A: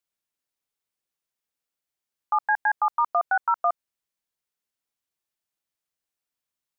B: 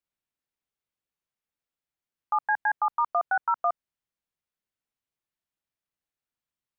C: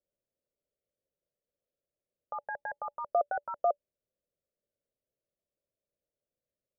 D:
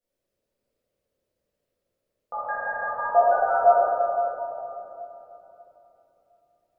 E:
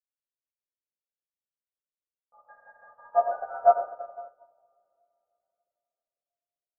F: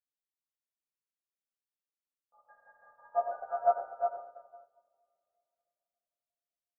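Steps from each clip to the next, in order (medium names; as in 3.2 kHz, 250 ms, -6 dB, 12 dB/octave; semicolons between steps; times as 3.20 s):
tone controls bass +5 dB, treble -7 dB; trim -2.5 dB
FFT filter 300 Hz 0 dB, 580 Hz +13 dB, 840 Hz -15 dB; trim +2 dB
simulated room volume 190 m³, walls hard, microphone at 1.8 m
upward expansion 2.5:1, over -34 dBFS
delay 359 ms -5.5 dB; trim -7.5 dB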